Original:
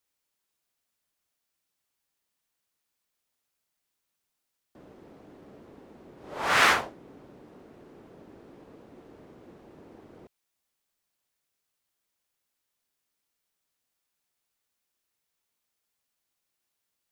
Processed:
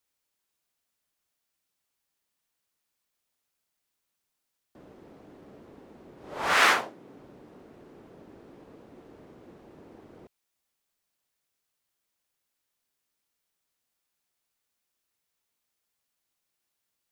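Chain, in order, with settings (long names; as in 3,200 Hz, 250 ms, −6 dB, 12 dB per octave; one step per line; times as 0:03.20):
0:06.53–0:07.18: high-pass filter 290 Hz → 91 Hz 12 dB per octave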